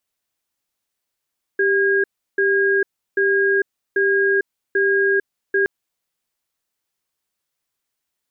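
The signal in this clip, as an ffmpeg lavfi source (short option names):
-f lavfi -i "aevalsrc='0.141*(sin(2*PI*393*t)+sin(2*PI*1630*t))*clip(min(mod(t,0.79),0.45-mod(t,0.79))/0.005,0,1)':d=4.07:s=44100"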